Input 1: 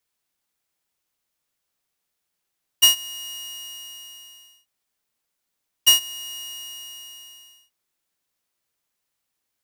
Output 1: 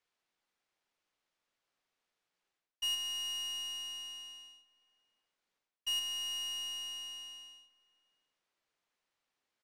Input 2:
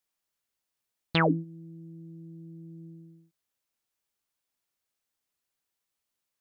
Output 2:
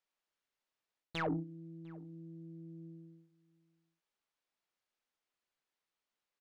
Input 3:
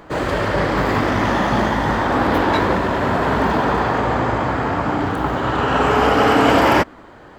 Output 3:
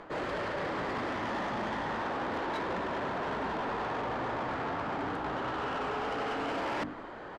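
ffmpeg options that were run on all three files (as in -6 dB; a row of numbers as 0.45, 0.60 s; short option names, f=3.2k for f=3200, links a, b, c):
-filter_complex "[0:a]equalizer=f=64:t=o:w=2.8:g=-9,bandreject=f=50:t=h:w=6,bandreject=f=100:t=h:w=6,bandreject=f=150:t=h:w=6,bandreject=f=200:t=h:w=6,bandreject=f=250:t=h:w=6,bandreject=f=300:t=h:w=6,areverse,acompressor=threshold=-29dB:ratio=5,areverse,asoftclip=type=tanh:threshold=-29dB,adynamicsmooth=sensitivity=5.5:basefreq=4.8k,asplit=2[a][b];[b]adelay=699.7,volume=-23dB,highshelf=f=4k:g=-15.7[c];[a][c]amix=inputs=2:normalize=0"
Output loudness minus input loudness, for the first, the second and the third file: -16.0, -16.0, -16.5 LU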